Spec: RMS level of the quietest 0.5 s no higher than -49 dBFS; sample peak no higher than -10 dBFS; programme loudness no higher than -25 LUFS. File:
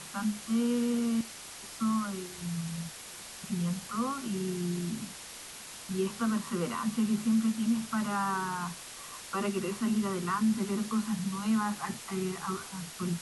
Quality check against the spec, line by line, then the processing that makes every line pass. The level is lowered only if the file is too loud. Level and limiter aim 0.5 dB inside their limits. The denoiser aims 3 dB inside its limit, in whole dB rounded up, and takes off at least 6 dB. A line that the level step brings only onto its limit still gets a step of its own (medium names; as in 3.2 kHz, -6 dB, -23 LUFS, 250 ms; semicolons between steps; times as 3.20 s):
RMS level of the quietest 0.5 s -46 dBFS: fail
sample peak -19.0 dBFS: pass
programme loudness -32.5 LUFS: pass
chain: noise reduction 6 dB, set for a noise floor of -46 dBFS